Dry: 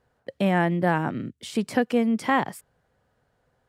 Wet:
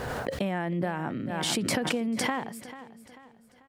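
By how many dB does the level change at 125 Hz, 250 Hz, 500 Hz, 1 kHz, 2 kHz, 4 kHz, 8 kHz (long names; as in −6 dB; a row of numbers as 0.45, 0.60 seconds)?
−5.5, −6.0, −5.5, −7.0, −4.5, +6.0, +9.0 decibels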